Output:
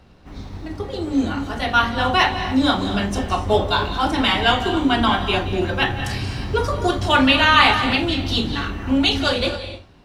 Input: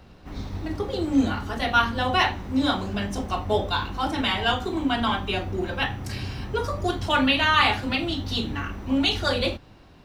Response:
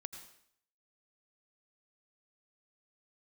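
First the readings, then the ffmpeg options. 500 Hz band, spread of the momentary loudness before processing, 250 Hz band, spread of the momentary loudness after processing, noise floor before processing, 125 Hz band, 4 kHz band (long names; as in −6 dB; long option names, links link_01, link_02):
+5.5 dB, 11 LU, +5.0 dB, 12 LU, −49 dBFS, +5.0 dB, +6.0 dB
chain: -filter_complex "[0:a]dynaudnorm=framelen=700:gausssize=5:maxgain=11.5dB,asplit=2[link_01][link_02];[1:a]atrim=start_sample=2205,afade=type=out:start_time=0.2:duration=0.01,atrim=end_sample=9261,asetrate=22050,aresample=44100[link_03];[link_02][link_03]afir=irnorm=-1:irlink=0,volume=5.5dB[link_04];[link_01][link_04]amix=inputs=2:normalize=0,volume=-9.5dB"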